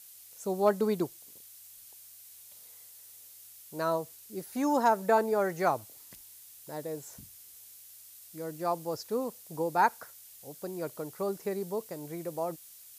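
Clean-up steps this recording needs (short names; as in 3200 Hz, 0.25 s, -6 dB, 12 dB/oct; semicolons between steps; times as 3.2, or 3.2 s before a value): clip repair -13 dBFS; noise print and reduce 24 dB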